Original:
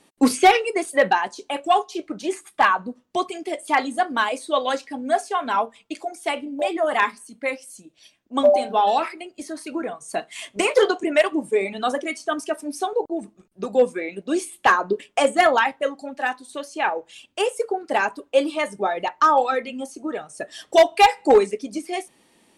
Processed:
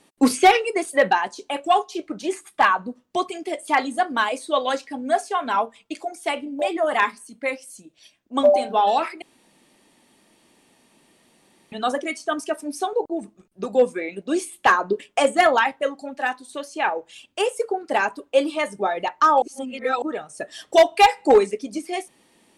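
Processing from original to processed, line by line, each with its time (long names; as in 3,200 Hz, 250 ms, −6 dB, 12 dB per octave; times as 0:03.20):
0:09.22–0:11.72: fill with room tone
0:19.42–0:20.02: reverse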